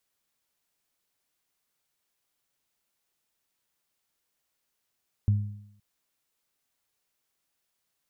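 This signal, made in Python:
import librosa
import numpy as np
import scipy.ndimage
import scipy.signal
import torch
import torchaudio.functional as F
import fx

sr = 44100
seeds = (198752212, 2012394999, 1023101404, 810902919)

y = fx.additive(sr, length_s=0.52, hz=103.0, level_db=-17, upper_db=(-14.5,), decay_s=0.71, upper_decays_s=(0.84,))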